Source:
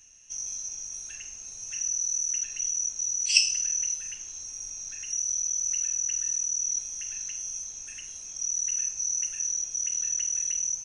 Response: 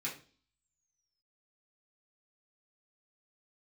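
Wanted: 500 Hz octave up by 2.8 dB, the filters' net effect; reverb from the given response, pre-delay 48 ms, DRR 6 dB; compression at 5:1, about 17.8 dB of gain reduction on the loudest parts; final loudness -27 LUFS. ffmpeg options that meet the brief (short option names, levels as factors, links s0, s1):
-filter_complex "[0:a]equalizer=f=500:t=o:g=3.5,acompressor=threshold=0.0158:ratio=5,asplit=2[s0][s1];[1:a]atrim=start_sample=2205,adelay=48[s2];[s1][s2]afir=irnorm=-1:irlink=0,volume=0.398[s3];[s0][s3]amix=inputs=2:normalize=0,volume=2.66"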